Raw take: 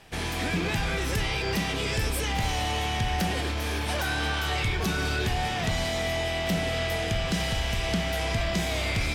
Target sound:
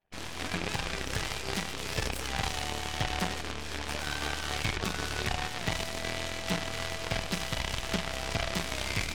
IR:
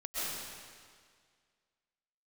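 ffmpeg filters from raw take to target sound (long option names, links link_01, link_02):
-af "lowpass=8100,afftfilt=real='re*gte(hypot(re,im),0.00398)':imag='im*gte(hypot(re,im),0.00398)':win_size=1024:overlap=0.75,aeval=exprs='0.141*(cos(1*acos(clip(val(0)/0.141,-1,1)))-cos(1*PI/2))+0.0316*(cos(2*acos(clip(val(0)/0.141,-1,1)))-cos(2*PI/2))+0.0447*(cos(3*acos(clip(val(0)/0.141,-1,1)))-cos(3*PI/2))+0.0126*(cos(8*acos(clip(val(0)/0.141,-1,1)))-cos(8*PI/2))':channel_layout=same"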